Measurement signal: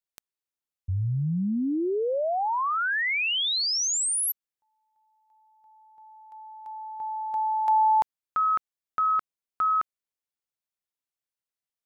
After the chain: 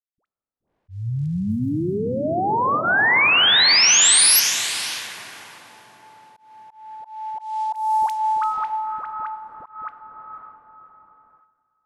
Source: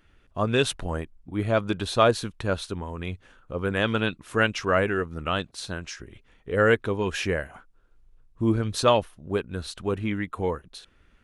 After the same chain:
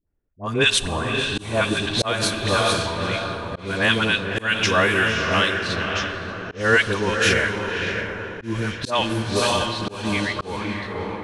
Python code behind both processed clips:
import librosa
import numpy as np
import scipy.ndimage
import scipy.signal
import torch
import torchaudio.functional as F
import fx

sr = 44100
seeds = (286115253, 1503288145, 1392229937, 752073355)

p1 = fx.dynamic_eq(x, sr, hz=520.0, q=1.8, threshold_db=-37.0, ratio=4.0, max_db=-4)
p2 = fx.notch(p1, sr, hz=1300.0, q=9.3)
p3 = p2 + fx.echo_diffused(p2, sr, ms=575, feedback_pct=51, wet_db=-4.5, dry=0)
p4 = fx.gate_hold(p3, sr, open_db=-41.0, close_db=-50.0, hold_ms=402.0, range_db=-18, attack_ms=0.18, release_ms=23.0)
p5 = fx.dispersion(p4, sr, late='highs', ms=79.0, hz=780.0)
p6 = fx.env_lowpass(p5, sr, base_hz=590.0, full_db=-21.5)
p7 = fx.rev_plate(p6, sr, seeds[0], rt60_s=2.9, hf_ratio=0.9, predelay_ms=0, drr_db=14.0)
p8 = fx.auto_swell(p7, sr, attack_ms=229.0)
p9 = fx.tilt_shelf(p8, sr, db=-4.5, hz=930.0)
y = p9 * 10.0 ** (6.5 / 20.0)